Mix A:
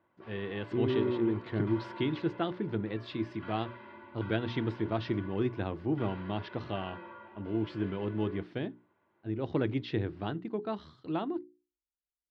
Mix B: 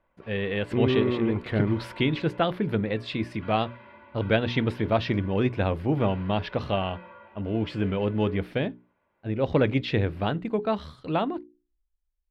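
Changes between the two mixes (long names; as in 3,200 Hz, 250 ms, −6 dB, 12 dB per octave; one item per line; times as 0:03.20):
speech +9.0 dB
master: remove loudspeaker in its box 110–6,400 Hz, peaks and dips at 110 Hz +6 dB, 340 Hz +9 dB, 540 Hz −6 dB, 2,400 Hz −5 dB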